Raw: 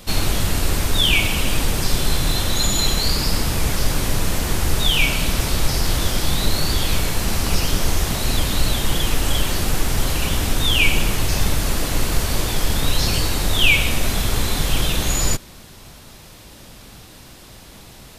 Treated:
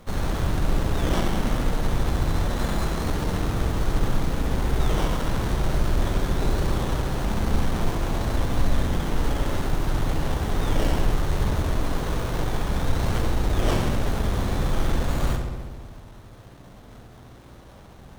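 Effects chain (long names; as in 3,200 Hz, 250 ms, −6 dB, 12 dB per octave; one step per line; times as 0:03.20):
on a send: feedback echo with a low-pass in the loop 68 ms, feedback 79%, low-pass 3,100 Hz, level −4 dB
on the sum: windowed peak hold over 17 samples
level −5 dB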